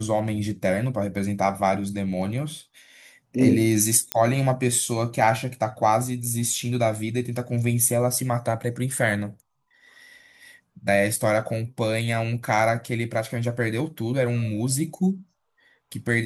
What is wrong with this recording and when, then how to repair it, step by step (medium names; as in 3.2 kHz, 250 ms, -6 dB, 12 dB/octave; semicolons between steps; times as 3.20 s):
4.12 s: pop -5 dBFS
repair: de-click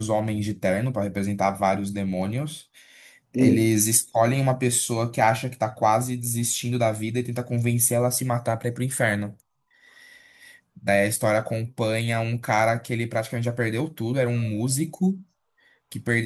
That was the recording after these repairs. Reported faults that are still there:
nothing left